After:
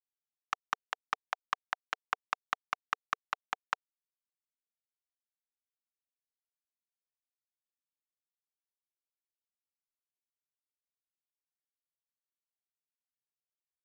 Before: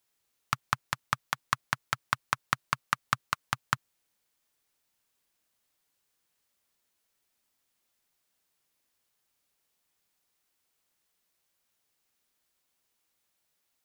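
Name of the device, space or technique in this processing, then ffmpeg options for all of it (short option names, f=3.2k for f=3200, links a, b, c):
hand-held game console: -af "acrusher=bits=3:mix=0:aa=0.000001,highpass=420,equalizer=f=450:t=q:w=4:g=5,equalizer=f=750:t=q:w=4:g=8,equalizer=f=4.5k:t=q:w=4:g=-8,lowpass=f=5.7k:w=0.5412,lowpass=f=5.7k:w=1.3066,volume=-5.5dB"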